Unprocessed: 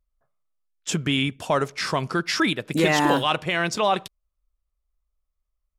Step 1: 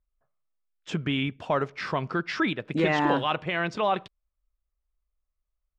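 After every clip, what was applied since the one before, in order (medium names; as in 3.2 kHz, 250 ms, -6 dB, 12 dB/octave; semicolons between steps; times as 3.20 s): low-pass 2.9 kHz 12 dB/octave; trim -3.5 dB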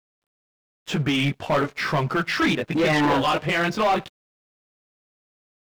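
chorus voices 2, 1 Hz, delay 17 ms, depth 4.2 ms; waveshaping leveller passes 3; word length cut 12-bit, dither none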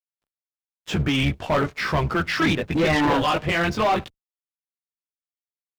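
octave divider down 1 oct, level -5 dB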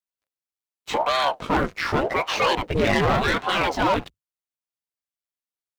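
ring modulator with a swept carrier 480 Hz, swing 90%, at 0.86 Hz; trim +2.5 dB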